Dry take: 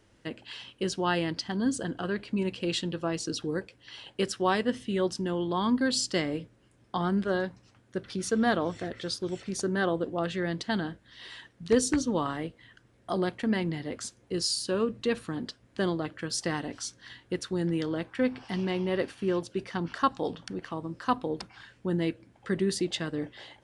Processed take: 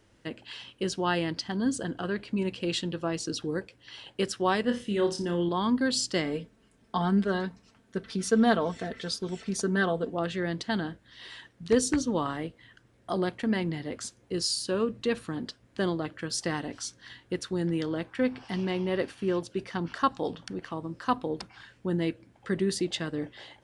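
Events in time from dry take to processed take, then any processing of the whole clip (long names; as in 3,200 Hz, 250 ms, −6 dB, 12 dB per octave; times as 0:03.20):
0:04.61–0:05.49: flutter between parallel walls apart 5 metres, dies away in 0.28 s
0:06.25–0:10.15: comb filter 4.5 ms, depth 57%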